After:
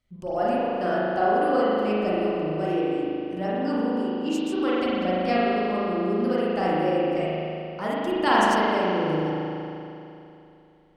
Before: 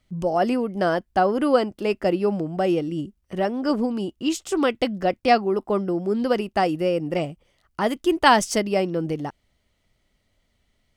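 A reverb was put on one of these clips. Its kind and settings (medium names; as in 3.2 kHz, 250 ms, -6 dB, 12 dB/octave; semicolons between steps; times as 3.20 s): spring tank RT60 2.9 s, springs 38 ms, chirp 25 ms, DRR -8.5 dB; trim -10.5 dB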